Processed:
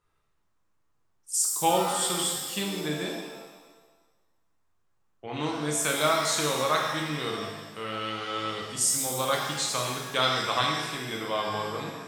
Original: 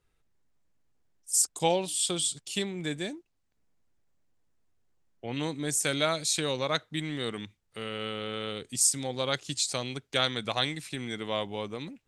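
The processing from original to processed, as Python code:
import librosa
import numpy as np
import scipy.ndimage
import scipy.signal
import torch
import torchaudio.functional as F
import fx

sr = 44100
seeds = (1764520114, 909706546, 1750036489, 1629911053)

y = fx.peak_eq(x, sr, hz=1100.0, db=11.0, octaves=0.7)
y = fx.rev_shimmer(y, sr, seeds[0], rt60_s=1.3, semitones=7, shimmer_db=-8, drr_db=-1.0)
y = y * librosa.db_to_amplitude(-3.0)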